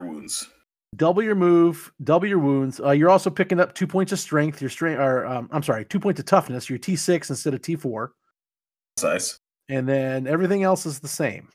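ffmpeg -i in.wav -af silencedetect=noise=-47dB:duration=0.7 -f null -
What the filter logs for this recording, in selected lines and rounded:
silence_start: 8.09
silence_end: 8.97 | silence_duration: 0.88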